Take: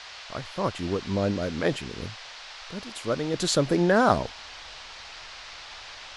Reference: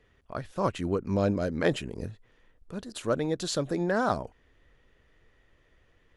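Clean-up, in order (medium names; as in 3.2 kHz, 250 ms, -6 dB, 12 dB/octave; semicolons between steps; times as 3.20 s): noise print and reduce 21 dB; trim 0 dB, from 3.34 s -6.5 dB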